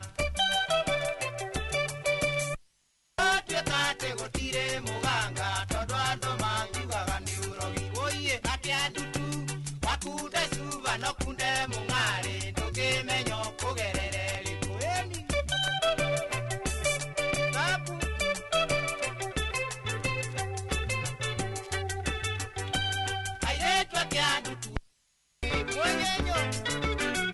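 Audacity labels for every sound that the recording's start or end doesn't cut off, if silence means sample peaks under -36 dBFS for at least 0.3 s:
3.180000	24.790000	sound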